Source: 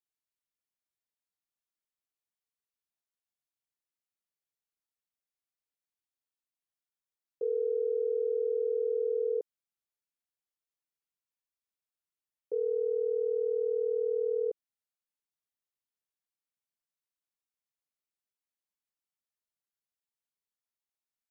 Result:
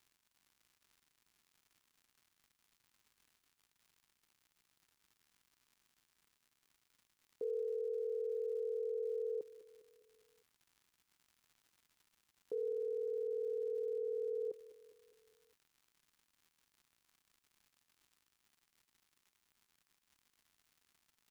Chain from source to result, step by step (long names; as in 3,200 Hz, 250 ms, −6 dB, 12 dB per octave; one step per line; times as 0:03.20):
brickwall limiter −34.5 dBFS, peak gain reduction 10.5 dB
surface crackle 180 per second −64 dBFS
parametric band 560 Hz −7.5 dB 0.94 octaves
repeating echo 203 ms, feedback 55%, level −16 dB
level +7 dB